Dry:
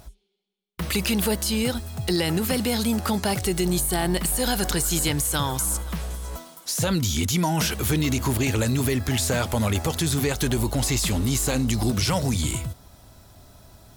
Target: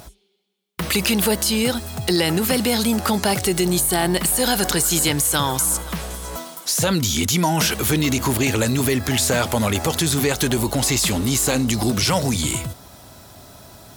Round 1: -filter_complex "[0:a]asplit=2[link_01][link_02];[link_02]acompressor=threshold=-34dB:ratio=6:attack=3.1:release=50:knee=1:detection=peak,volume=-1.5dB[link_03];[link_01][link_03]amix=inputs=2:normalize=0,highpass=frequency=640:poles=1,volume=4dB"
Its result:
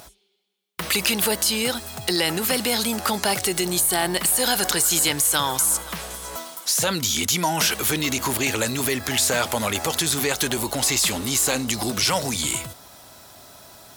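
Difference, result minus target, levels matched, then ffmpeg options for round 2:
125 Hz band −7.5 dB
-filter_complex "[0:a]asplit=2[link_01][link_02];[link_02]acompressor=threshold=-34dB:ratio=6:attack=3.1:release=50:knee=1:detection=peak,volume=-1.5dB[link_03];[link_01][link_03]amix=inputs=2:normalize=0,highpass=frequency=170:poles=1,volume=4dB"

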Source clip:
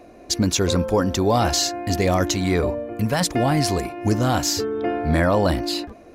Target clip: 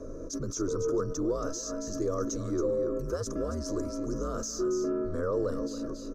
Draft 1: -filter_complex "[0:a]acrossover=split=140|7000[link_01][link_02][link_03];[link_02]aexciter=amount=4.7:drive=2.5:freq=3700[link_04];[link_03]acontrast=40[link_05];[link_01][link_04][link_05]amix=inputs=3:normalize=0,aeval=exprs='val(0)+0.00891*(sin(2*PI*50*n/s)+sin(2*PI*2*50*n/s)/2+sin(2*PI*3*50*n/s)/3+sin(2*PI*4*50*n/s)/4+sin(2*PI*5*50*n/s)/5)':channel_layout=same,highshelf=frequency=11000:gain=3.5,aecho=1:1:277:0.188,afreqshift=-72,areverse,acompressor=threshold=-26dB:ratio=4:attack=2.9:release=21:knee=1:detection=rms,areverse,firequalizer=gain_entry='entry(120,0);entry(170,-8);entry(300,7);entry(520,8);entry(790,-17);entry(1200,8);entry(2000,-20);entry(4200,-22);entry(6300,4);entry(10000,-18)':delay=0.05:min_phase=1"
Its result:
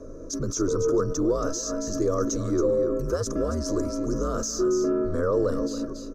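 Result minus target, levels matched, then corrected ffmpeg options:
downward compressor: peak gain reduction −6 dB
-filter_complex "[0:a]acrossover=split=140|7000[link_01][link_02][link_03];[link_02]aexciter=amount=4.7:drive=2.5:freq=3700[link_04];[link_03]acontrast=40[link_05];[link_01][link_04][link_05]amix=inputs=3:normalize=0,aeval=exprs='val(0)+0.00891*(sin(2*PI*50*n/s)+sin(2*PI*2*50*n/s)/2+sin(2*PI*3*50*n/s)/3+sin(2*PI*4*50*n/s)/4+sin(2*PI*5*50*n/s)/5)':channel_layout=same,highshelf=frequency=11000:gain=3.5,aecho=1:1:277:0.188,afreqshift=-72,areverse,acompressor=threshold=-34dB:ratio=4:attack=2.9:release=21:knee=1:detection=rms,areverse,firequalizer=gain_entry='entry(120,0);entry(170,-8);entry(300,7);entry(520,8);entry(790,-17);entry(1200,8);entry(2000,-20);entry(4200,-22);entry(6300,4);entry(10000,-18)':delay=0.05:min_phase=1"

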